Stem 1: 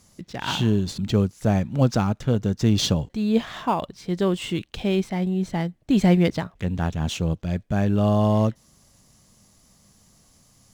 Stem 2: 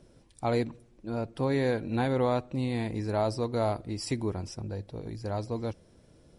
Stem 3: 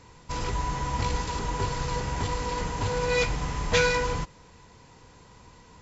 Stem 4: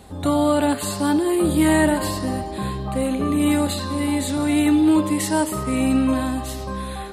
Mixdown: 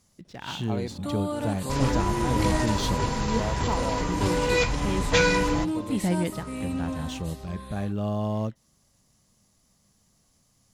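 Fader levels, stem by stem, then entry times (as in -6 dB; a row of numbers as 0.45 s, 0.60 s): -8.5 dB, -6.0 dB, +1.5 dB, -12.5 dB; 0.00 s, 0.25 s, 1.40 s, 0.80 s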